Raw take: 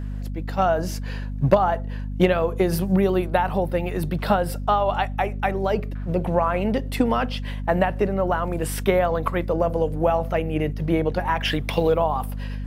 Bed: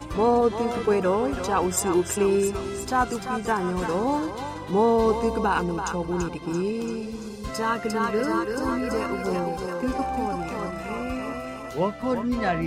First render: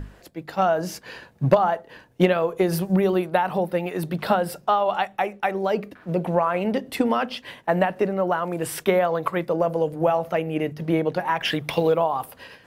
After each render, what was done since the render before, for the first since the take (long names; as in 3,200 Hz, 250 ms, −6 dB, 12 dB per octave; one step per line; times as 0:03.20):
mains-hum notches 50/100/150/200/250 Hz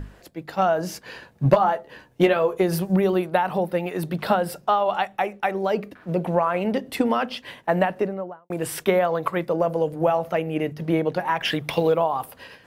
0:01.44–0:02.57: double-tracking delay 14 ms −6 dB
0:07.87–0:08.50: fade out and dull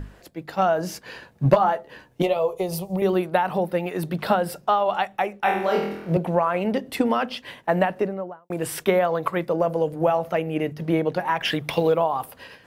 0:02.22–0:03.02: phaser with its sweep stopped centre 660 Hz, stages 4
0:05.41–0:06.17: flutter between parallel walls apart 4.2 metres, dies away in 0.71 s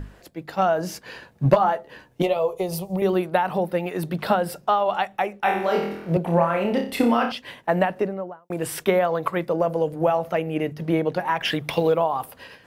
0:06.23–0:07.32: flutter between parallel walls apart 5.1 metres, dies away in 0.4 s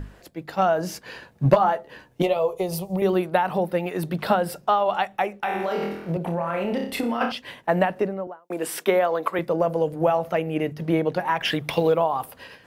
0:05.41–0:07.21: downward compressor, threshold −21 dBFS
0:08.27–0:09.39: high-pass filter 220 Hz 24 dB per octave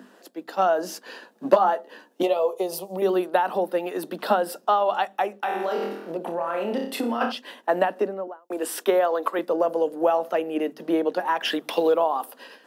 Butterworth high-pass 220 Hz 48 dB per octave
parametric band 2,200 Hz −9 dB 0.31 octaves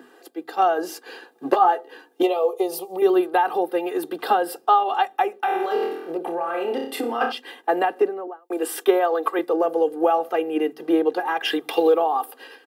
parametric band 5,900 Hz −5 dB 0.74 octaves
comb filter 2.5 ms, depth 84%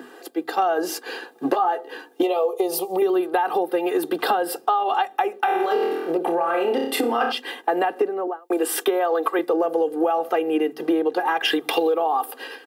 in parallel at +2 dB: brickwall limiter −14.5 dBFS, peak gain reduction 9.5 dB
on the sum: downward compressor 5 to 1, threshold −18 dBFS, peak gain reduction 10.5 dB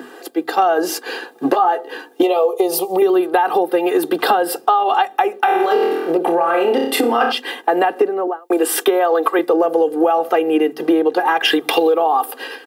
level +6 dB
brickwall limiter −3 dBFS, peak gain reduction 1 dB